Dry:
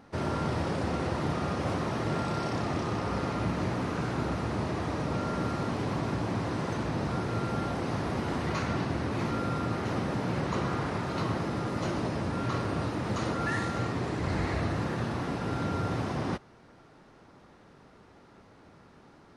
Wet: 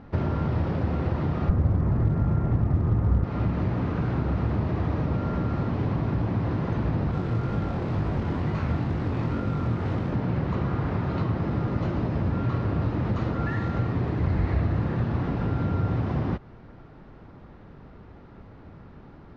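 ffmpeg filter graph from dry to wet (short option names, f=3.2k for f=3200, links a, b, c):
-filter_complex "[0:a]asettb=1/sr,asplit=3[a][b][c];[a]atrim=end=1.494[d];[b]atrim=start=1.49:end=3.24,asetpts=PTS-STARTPTS,afade=t=in:d=0.004:c=qsin,afade=t=out:st=1.746:d=0.004:c=qsin,lowpass=f=2.2k:w=0.5412,lowpass=f=2.2k:w=1.3066,aemphasis=mode=reproduction:type=bsi,acrusher=bits=6:mode=log:mix=0:aa=0.000001[e];[c]atrim=start=3.236[f];[d][e]acrossfade=d=0.004:c1=hsin:c2=qsin[g];[g][f]acrossfade=d=0.004:c1=qsin:c2=hsin,asettb=1/sr,asplit=3[h][i][j];[h]atrim=end=7.114[k];[i]atrim=start=7.11:end=10.13,asetpts=PTS-STARTPTS,afade=t=in:d=0.004:c=qsin,afade=t=out:st=3.016:d=0.004:c=qsin,acrusher=bits=3:mode=log:mix=0:aa=0.000001,flanger=delay=19:depth=6.2:speed=2.1[l];[j]atrim=start=10.126[m];[k][l]acrossfade=d=0.004:c1=hsin:c2=qsin[n];[n][m]acrossfade=d=0.004:c1=qsin:c2=hsin,lowpass=4.3k,acompressor=threshold=-32dB:ratio=6,aemphasis=mode=reproduction:type=bsi,volume=3.5dB"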